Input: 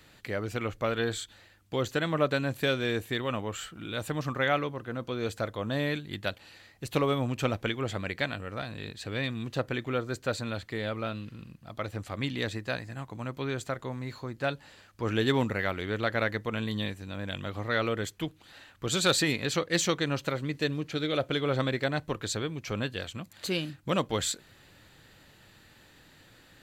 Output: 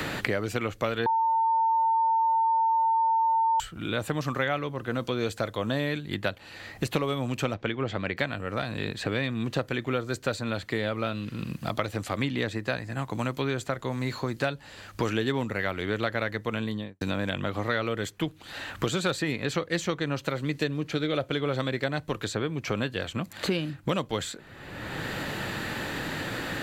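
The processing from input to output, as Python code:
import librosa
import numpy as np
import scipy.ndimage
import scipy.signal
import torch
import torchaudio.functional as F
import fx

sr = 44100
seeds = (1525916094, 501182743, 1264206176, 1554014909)

y = fx.air_absorb(x, sr, metres=150.0, at=(7.54, 8.17))
y = fx.studio_fade_out(y, sr, start_s=16.49, length_s=0.52)
y = fx.edit(y, sr, fx.bleep(start_s=1.06, length_s=2.54, hz=902.0, db=-19.5), tone=tone)
y = fx.band_squash(y, sr, depth_pct=100)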